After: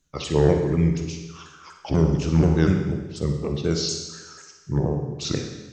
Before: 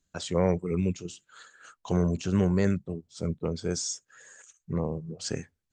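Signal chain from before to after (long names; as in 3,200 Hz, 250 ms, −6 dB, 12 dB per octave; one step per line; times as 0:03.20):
pitch shifter swept by a sawtooth −5 semitones, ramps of 243 ms
on a send: convolution reverb RT60 1.2 s, pre-delay 42 ms, DRR 4 dB
on the sum: level +6 dB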